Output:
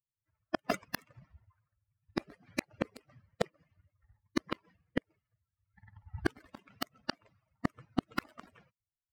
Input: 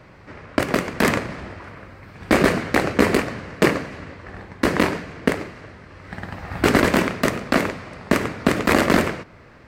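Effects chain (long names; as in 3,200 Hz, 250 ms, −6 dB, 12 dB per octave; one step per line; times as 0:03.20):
spectral dynamics exaggerated over time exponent 3
in parallel at −2.5 dB: downward compressor, threshold −36 dBFS, peak gain reduction 19.5 dB
on the sum: speed change +6%
gate with flip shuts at −13 dBFS, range −35 dB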